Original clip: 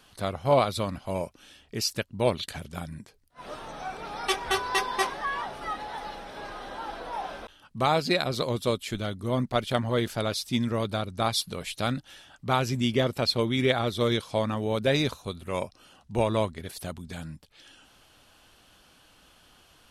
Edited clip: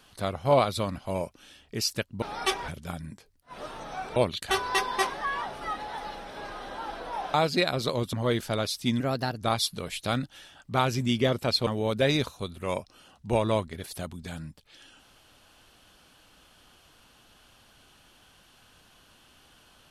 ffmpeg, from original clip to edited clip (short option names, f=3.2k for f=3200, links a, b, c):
-filter_complex "[0:a]asplit=10[a][b][c][d][e][f][g][h][i][j];[a]atrim=end=2.222[k];[b]atrim=start=4.038:end=4.502[l];[c]atrim=start=2.558:end=4.042[m];[d]atrim=start=2.218:end=2.562[n];[e]atrim=start=4.498:end=7.342[o];[f]atrim=start=7.868:end=8.662[p];[g]atrim=start=9.798:end=10.674[q];[h]atrim=start=10.67:end=11.15,asetpts=PTS-STARTPTS,asetrate=52038,aresample=44100[r];[i]atrim=start=11.146:end=13.412[s];[j]atrim=start=14.518[t];[k][l]acrossfade=d=0.004:c1=hsin:c2=hsin[u];[u][m]acrossfade=d=0.004:c1=hsin:c2=hsin[v];[v][n]acrossfade=d=0.004:c1=hsin:c2=hsin[w];[w][o]acrossfade=d=0.004:c1=hsin:c2=hsin[x];[x][p]acrossfade=d=0.004:c1=hsin:c2=hsin[y];[y][q]acrossfade=d=0.004:c1=hsin:c2=hsin[z];[z][r]acrossfade=d=0.004:c1=hsin:c2=hsin[aa];[aa][s]acrossfade=d=0.004:c1=hsin:c2=hsin[ab];[ab][t]acrossfade=d=0.004:c1=hsin:c2=hsin"